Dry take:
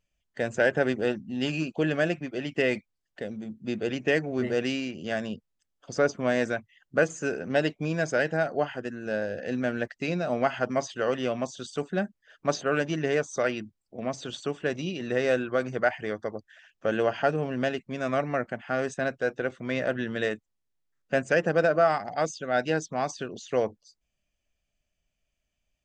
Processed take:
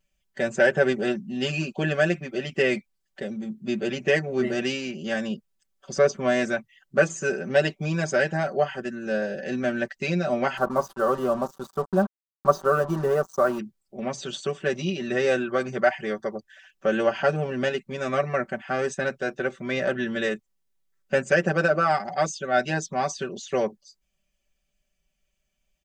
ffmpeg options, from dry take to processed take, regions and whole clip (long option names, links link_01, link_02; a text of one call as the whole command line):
ffmpeg -i in.wav -filter_complex "[0:a]asettb=1/sr,asplit=3[link_01][link_02][link_03];[link_01]atrim=end=10.574[link_04];[link_02]atrim=start=10.57:end=13.59,asetpts=PTS-STARTPTS,afade=type=in:duration=0.004:curve=qsin,afade=type=out:start_time=3.016:duration=0.004:curve=qsin,acrusher=bits=5:mix=0:aa=0.5,highshelf=frequency=1600:width_type=q:width=3:gain=-10.5[link_05];[link_03]atrim=start=13.586[link_06];[link_04][link_05]acrossfade=duration=0.004:curve1=hsin:curve2=qsin[link_07];[link_07][link_06]acrossfade=duration=0.004:curve1=qsin:curve2=hsin,highshelf=frequency=6700:gain=4.5,aecho=1:1:5.2:0.98" out.wav